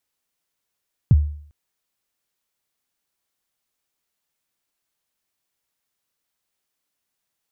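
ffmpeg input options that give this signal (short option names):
-f lavfi -i "aevalsrc='0.473*pow(10,-3*t/0.56)*sin(2*PI*(160*0.035/log(74/160)*(exp(log(74/160)*min(t,0.035)/0.035)-1)+74*max(t-0.035,0)))':d=0.4:s=44100"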